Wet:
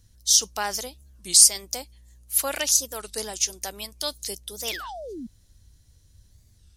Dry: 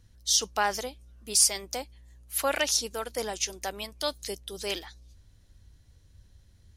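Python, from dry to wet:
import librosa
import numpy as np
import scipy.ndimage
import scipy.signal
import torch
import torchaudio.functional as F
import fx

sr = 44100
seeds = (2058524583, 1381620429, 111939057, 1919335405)

y = fx.spec_paint(x, sr, seeds[0], shape='fall', start_s=4.66, length_s=0.61, low_hz=210.0, high_hz=3100.0, level_db=-34.0)
y = fx.bass_treble(y, sr, bass_db=3, treble_db=11)
y = fx.record_warp(y, sr, rpm=33.33, depth_cents=250.0)
y = y * librosa.db_to_amplitude(-2.5)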